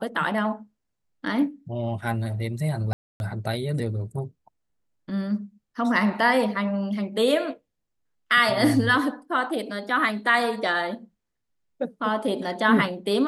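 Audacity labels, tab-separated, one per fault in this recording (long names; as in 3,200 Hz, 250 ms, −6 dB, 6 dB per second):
2.930000	3.200000	drop-out 271 ms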